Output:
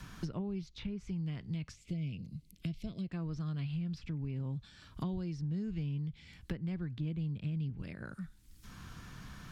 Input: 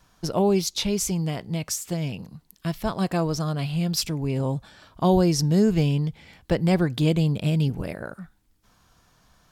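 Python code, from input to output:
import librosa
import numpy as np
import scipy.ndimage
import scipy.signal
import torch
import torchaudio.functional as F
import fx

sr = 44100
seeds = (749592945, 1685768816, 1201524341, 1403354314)

y = fx.spec_box(x, sr, start_s=1.75, length_s=1.36, low_hz=690.0, high_hz=2000.0, gain_db=-16)
y = fx.env_lowpass_down(y, sr, base_hz=1800.0, full_db=-20.5)
y = fx.tone_stack(y, sr, knobs='6-0-2')
y = fx.band_squash(y, sr, depth_pct=100)
y = y * 10.0 ** (2.5 / 20.0)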